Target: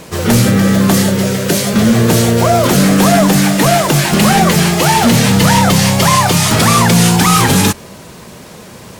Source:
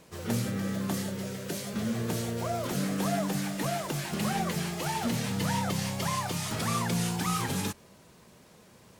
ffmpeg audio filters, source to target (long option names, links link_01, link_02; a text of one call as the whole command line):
ffmpeg -i in.wav -af "apsyclip=25.5dB,volume=-3.5dB" out.wav